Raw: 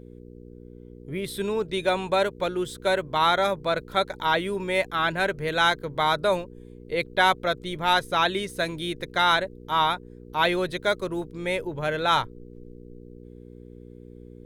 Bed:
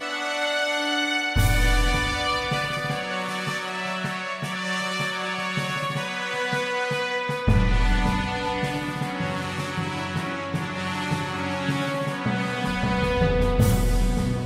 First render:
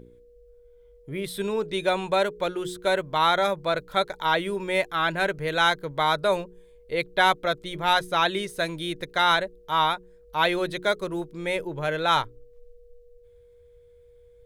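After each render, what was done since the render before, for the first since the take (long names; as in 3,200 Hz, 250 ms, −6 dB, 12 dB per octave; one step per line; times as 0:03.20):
hum removal 60 Hz, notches 7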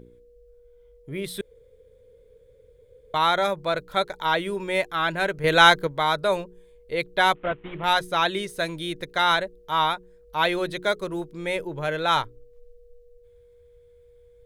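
0:01.41–0:03.14: fill with room tone
0:05.44–0:05.87: clip gain +7 dB
0:07.35–0:07.84: variable-slope delta modulation 16 kbit/s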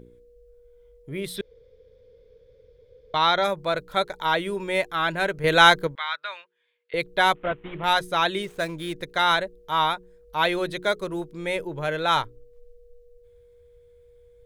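0:01.36–0:03.44: high shelf with overshoot 6,500 Hz −8 dB, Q 3
0:05.95–0:06.94: flat-topped band-pass 2,200 Hz, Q 1
0:08.42–0:08.99: running median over 9 samples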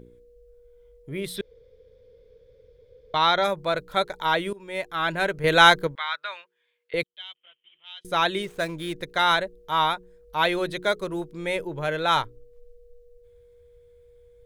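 0:04.53–0:05.12: fade in, from −19.5 dB
0:07.03–0:08.05: resonant band-pass 3,100 Hz, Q 20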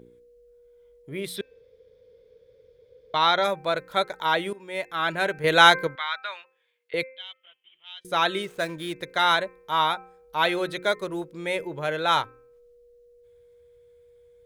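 high-pass filter 170 Hz 6 dB per octave
hum removal 260.9 Hz, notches 10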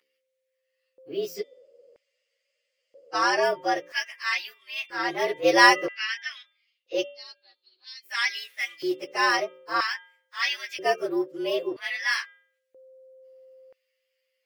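partials spread apart or drawn together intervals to 113%
auto-filter high-pass square 0.51 Hz 350–2,100 Hz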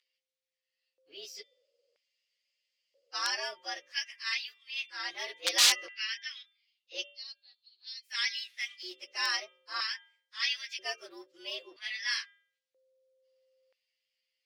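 wrap-around overflow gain 10.5 dB
resonant band-pass 4,300 Hz, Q 1.3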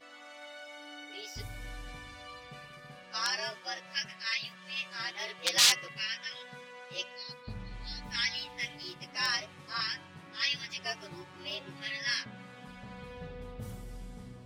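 mix in bed −23 dB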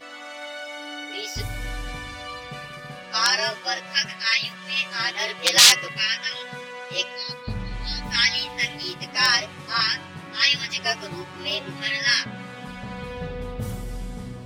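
level +12 dB
brickwall limiter −1 dBFS, peak gain reduction 2.5 dB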